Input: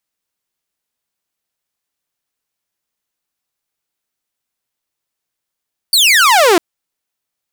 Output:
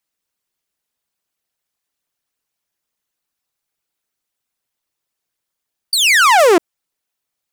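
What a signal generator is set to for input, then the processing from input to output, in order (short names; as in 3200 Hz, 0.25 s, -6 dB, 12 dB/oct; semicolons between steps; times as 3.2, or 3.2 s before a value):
laser zap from 4700 Hz, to 320 Hz, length 0.65 s saw, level -4 dB
formant sharpening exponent 1.5; dynamic EQ 4000 Hz, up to -6 dB, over -24 dBFS, Q 1.5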